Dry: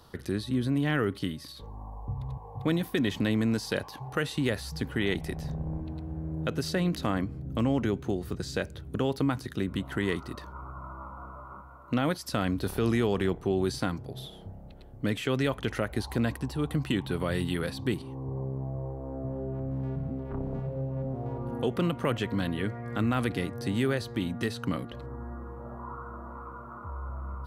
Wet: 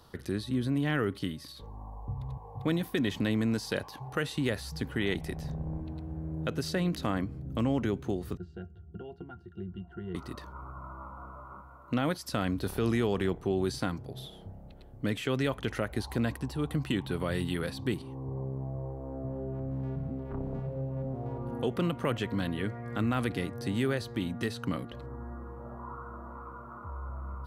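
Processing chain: 8.37–10.15 octave resonator F, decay 0.11 s; gain -2 dB

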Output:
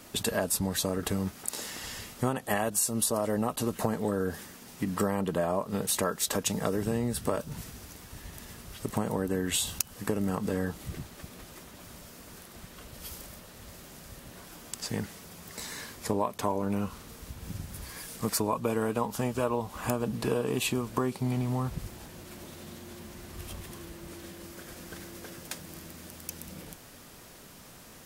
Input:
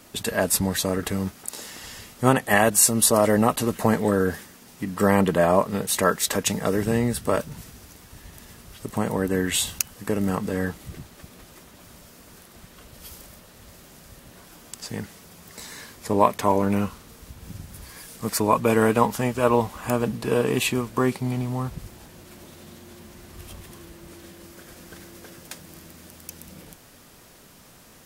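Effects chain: dynamic EQ 2000 Hz, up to -6 dB, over -43 dBFS, Q 2.3; compressor, threshold -25 dBFS, peak gain reduction 13.5 dB

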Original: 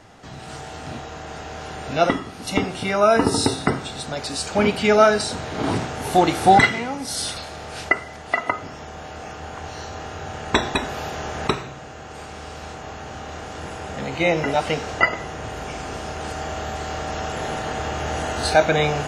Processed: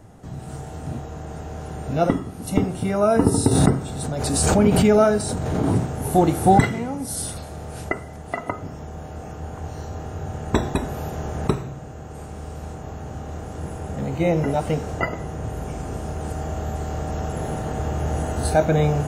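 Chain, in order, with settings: EQ curve 160 Hz 0 dB, 240 Hz -4 dB, 500 Hz -7 dB, 2400 Hz -18 dB, 4800 Hz -18 dB, 11000 Hz -1 dB; 3.51–5.72 backwards sustainer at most 26 dB/s; gain +6.5 dB

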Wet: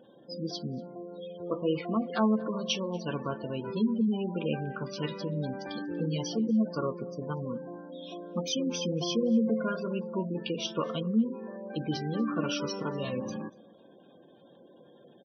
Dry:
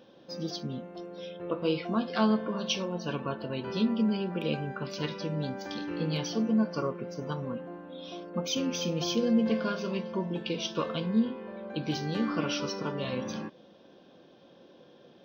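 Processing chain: spectral gate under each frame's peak -20 dB strong; outdoor echo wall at 41 m, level -23 dB

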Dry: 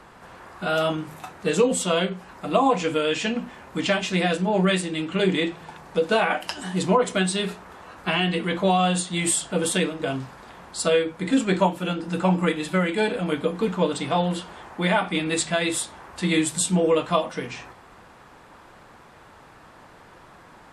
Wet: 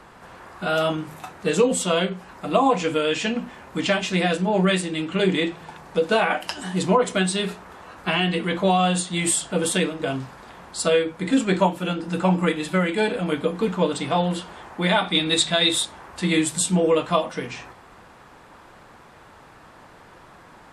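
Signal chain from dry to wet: 14.89–15.85 bell 3700 Hz +14.5 dB 0.21 oct; gain +1 dB

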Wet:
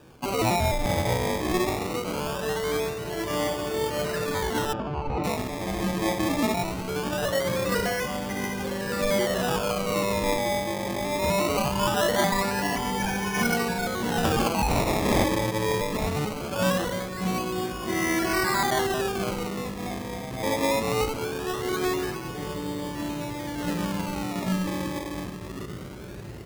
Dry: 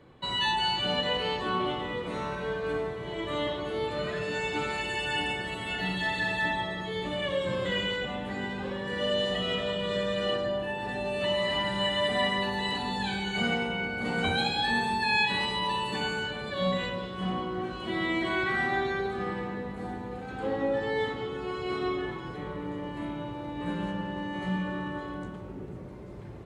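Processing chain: 14.68–15.24 spectral contrast lowered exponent 0.27; decimation with a swept rate 21×, swing 100% 0.21 Hz; 4.73–5.24 tape spacing loss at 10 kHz 38 dB; gain +4 dB

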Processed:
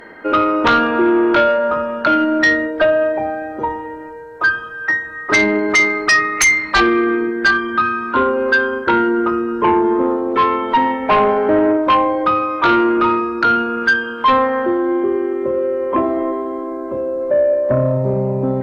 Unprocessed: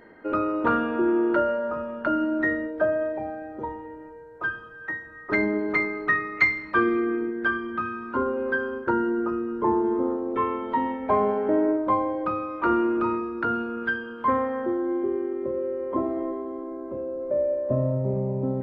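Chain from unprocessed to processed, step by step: tilt shelf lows -4.5 dB, about 670 Hz; sine folder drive 12 dB, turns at -4 dBFS; gain -4 dB

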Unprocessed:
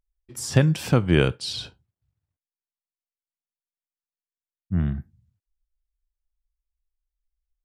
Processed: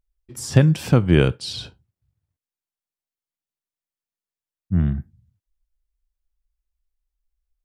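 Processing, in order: low shelf 470 Hz +4.5 dB

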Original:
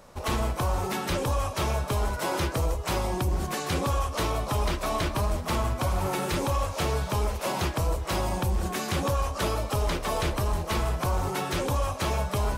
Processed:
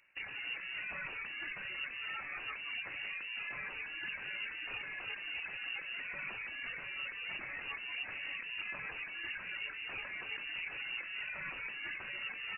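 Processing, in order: tracing distortion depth 0.11 ms; reverb removal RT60 0.81 s; gate -37 dBFS, range -23 dB; low shelf 120 Hz -5 dB; de-hum 393.4 Hz, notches 37; negative-ratio compressor -40 dBFS, ratio -1; limiter -31.5 dBFS, peak gain reduction 10 dB; frequency-shifting echo 0.177 s, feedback 31%, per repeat +130 Hz, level -8 dB; inverted band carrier 2800 Hz; gain -2 dB

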